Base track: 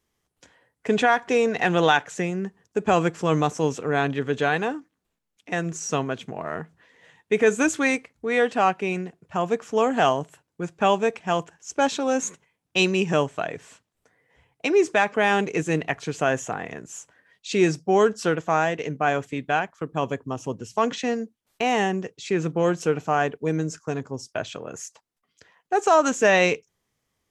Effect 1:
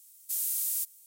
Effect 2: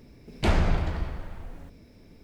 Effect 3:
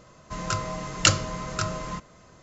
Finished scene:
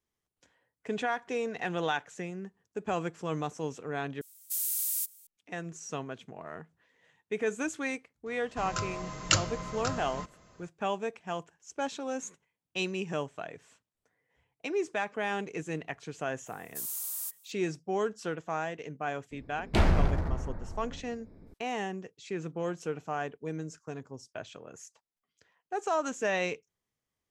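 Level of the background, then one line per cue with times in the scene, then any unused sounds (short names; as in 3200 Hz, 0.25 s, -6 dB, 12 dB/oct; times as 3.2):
base track -12 dB
4.21 replace with 1 -0.5 dB
8.26 add 3 -6 dB
16.46 add 1 -5.5 dB + band shelf 790 Hz +15 dB
19.31 add 2 -1 dB + Wiener smoothing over 15 samples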